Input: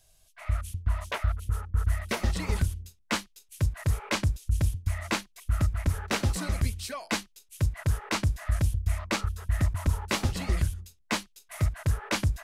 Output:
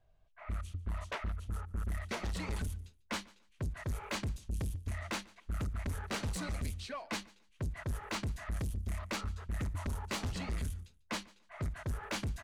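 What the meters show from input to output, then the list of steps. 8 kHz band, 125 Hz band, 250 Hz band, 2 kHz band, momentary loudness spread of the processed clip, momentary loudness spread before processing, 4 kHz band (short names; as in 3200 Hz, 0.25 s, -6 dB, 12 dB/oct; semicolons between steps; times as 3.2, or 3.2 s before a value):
-9.0 dB, -11.0 dB, -7.5 dB, -8.5 dB, 4 LU, 5 LU, -8.5 dB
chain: notch 5200 Hz, Q 21; low-pass opened by the level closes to 1400 Hz, open at -21.5 dBFS; soft clip -28.5 dBFS, distortion -8 dB; feedback echo 0.145 s, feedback 22%, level -23.5 dB; gain -3.5 dB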